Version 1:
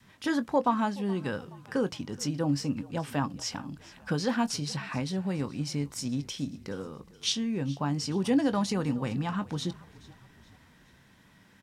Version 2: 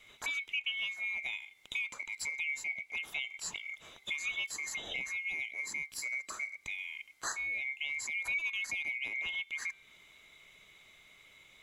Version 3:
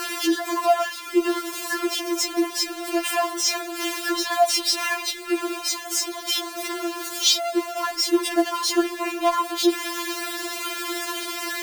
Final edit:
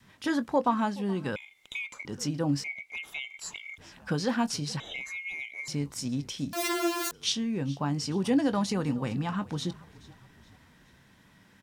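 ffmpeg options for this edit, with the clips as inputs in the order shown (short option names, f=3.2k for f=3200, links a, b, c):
-filter_complex "[1:a]asplit=3[a][b][c];[0:a]asplit=5[d][e][f][g][h];[d]atrim=end=1.362[i];[a]atrim=start=1.358:end=2.052[j];[e]atrim=start=2.048:end=2.642[k];[b]atrim=start=2.638:end=3.782[l];[f]atrim=start=3.778:end=4.802[m];[c]atrim=start=4.798:end=5.682[n];[g]atrim=start=5.678:end=6.532[o];[2:a]atrim=start=6.528:end=7.112[p];[h]atrim=start=7.108[q];[i][j]acrossfade=d=0.004:c1=hsin:c2=hsin[r];[r][k]acrossfade=d=0.004:c1=hsin:c2=hsin[s];[s][l]acrossfade=d=0.004:c1=hsin:c2=hsin[t];[t][m]acrossfade=d=0.004:c1=hsin:c2=hsin[u];[u][n]acrossfade=d=0.004:c1=hsin:c2=hsin[v];[v][o]acrossfade=d=0.004:c1=hsin:c2=hsin[w];[w][p]acrossfade=d=0.004:c1=hsin:c2=hsin[x];[x][q]acrossfade=d=0.004:c1=hsin:c2=hsin"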